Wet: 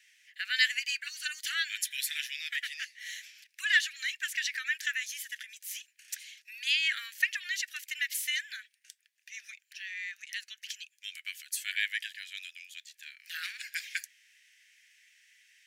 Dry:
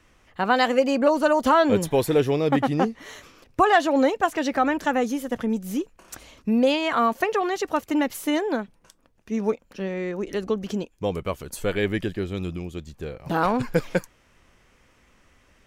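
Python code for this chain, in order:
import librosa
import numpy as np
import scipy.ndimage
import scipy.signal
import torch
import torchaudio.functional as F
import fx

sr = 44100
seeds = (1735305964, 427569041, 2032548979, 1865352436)

y = scipy.signal.sosfilt(scipy.signal.butter(12, 1700.0, 'highpass', fs=sr, output='sos'), x)
y = y * librosa.db_to_amplitude(2.0)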